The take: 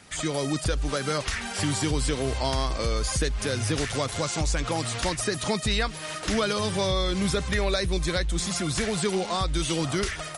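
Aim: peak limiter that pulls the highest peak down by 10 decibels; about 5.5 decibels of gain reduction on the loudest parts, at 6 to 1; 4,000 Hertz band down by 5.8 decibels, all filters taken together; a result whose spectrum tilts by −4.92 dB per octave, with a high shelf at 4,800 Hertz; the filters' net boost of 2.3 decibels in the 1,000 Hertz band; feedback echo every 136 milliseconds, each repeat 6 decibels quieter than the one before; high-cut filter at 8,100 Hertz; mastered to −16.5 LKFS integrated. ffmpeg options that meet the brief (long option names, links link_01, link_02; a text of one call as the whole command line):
ffmpeg -i in.wav -af "lowpass=8100,equalizer=frequency=1000:width_type=o:gain=3.5,equalizer=frequency=4000:width_type=o:gain=-3,highshelf=frequency=4800:gain=-8.5,acompressor=threshold=-27dB:ratio=6,alimiter=level_in=4dB:limit=-24dB:level=0:latency=1,volume=-4dB,aecho=1:1:136|272|408|544|680|816:0.501|0.251|0.125|0.0626|0.0313|0.0157,volume=19dB" out.wav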